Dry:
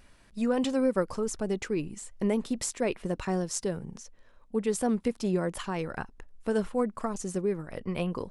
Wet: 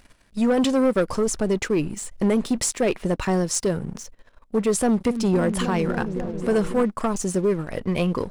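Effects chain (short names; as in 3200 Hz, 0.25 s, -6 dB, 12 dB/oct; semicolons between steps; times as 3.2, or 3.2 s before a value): 4.73–6.84 repeats that get brighter 0.274 s, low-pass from 200 Hz, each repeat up 1 oct, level -6 dB; sample leveller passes 2; gain +2 dB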